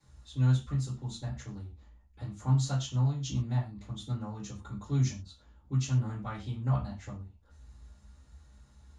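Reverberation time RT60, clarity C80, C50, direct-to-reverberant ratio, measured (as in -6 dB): no single decay rate, 14.0 dB, 9.0 dB, -9.5 dB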